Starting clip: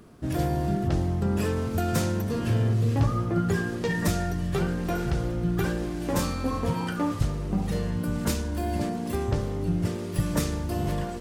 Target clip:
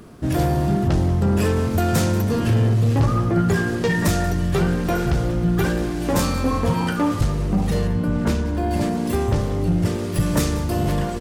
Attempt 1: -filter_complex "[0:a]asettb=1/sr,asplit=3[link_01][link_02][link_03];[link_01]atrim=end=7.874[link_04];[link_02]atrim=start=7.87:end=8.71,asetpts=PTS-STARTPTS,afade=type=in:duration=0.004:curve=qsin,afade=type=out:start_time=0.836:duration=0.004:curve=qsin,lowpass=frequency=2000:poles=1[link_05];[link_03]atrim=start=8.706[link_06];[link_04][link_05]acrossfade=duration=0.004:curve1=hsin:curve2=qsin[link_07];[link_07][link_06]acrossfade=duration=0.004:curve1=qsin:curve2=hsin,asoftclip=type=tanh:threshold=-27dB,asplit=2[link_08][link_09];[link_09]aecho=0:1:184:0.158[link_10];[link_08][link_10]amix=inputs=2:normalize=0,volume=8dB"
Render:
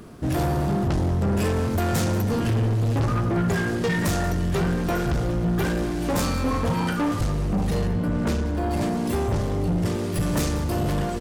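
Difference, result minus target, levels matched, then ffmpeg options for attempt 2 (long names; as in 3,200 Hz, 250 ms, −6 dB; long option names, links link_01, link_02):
soft clipping: distortion +9 dB
-filter_complex "[0:a]asettb=1/sr,asplit=3[link_01][link_02][link_03];[link_01]atrim=end=7.874[link_04];[link_02]atrim=start=7.87:end=8.71,asetpts=PTS-STARTPTS,afade=type=in:duration=0.004:curve=qsin,afade=type=out:start_time=0.836:duration=0.004:curve=qsin,lowpass=frequency=2000:poles=1[link_05];[link_03]atrim=start=8.706[link_06];[link_04][link_05]acrossfade=duration=0.004:curve1=hsin:curve2=qsin[link_07];[link_07][link_06]acrossfade=duration=0.004:curve1=qsin:curve2=hsin,asoftclip=type=tanh:threshold=-18.5dB,asplit=2[link_08][link_09];[link_09]aecho=0:1:184:0.158[link_10];[link_08][link_10]amix=inputs=2:normalize=0,volume=8dB"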